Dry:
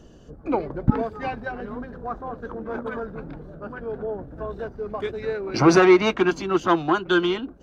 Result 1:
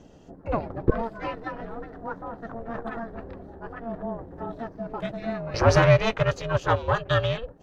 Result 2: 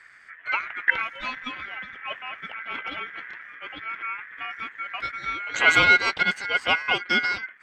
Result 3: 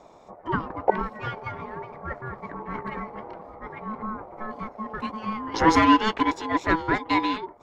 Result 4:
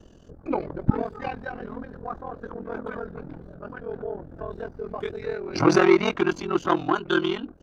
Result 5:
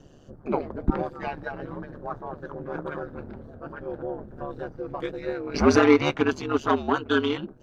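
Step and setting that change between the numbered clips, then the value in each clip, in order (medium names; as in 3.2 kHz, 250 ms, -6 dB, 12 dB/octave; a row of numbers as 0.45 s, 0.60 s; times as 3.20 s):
ring modulator, frequency: 230 Hz, 1.8 kHz, 650 Hz, 21 Hz, 72 Hz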